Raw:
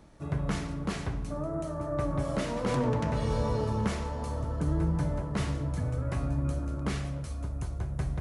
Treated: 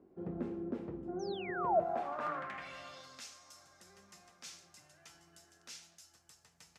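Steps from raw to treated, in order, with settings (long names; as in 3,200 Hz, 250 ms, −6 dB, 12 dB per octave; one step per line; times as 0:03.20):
speed change +21%
sound drawn into the spectrogram fall, 0:01.19–0:01.80, 600–6,500 Hz −23 dBFS
band-pass filter sweep 350 Hz → 5,800 Hz, 0:01.48–0:03.26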